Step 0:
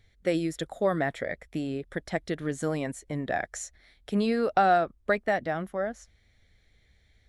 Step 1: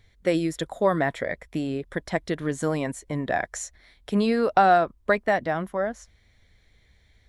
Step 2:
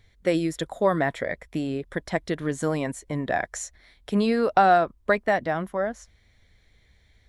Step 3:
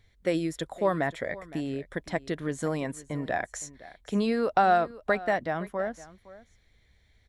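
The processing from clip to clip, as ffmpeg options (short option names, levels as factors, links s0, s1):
-af "equalizer=f=1000:w=7.6:g=9,volume=1.5"
-af anull
-af "aecho=1:1:513:0.119,volume=0.631"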